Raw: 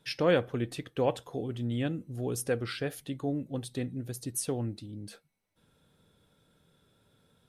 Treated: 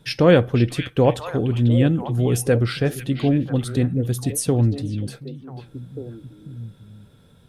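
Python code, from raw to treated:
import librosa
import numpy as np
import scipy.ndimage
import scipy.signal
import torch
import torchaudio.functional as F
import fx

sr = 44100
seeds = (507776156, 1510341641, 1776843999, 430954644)

p1 = fx.low_shelf(x, sr, hz=220.0, db=11.0)
p2 = p1 + fx.echo_stepped(p1, sr, ms=494, hz=2700.0, octaves=-1.4, feedback_pct=70, wet_db=-5, dry=0)
y = F.gain(torch.from_numpy(p2), 8.5).numpy()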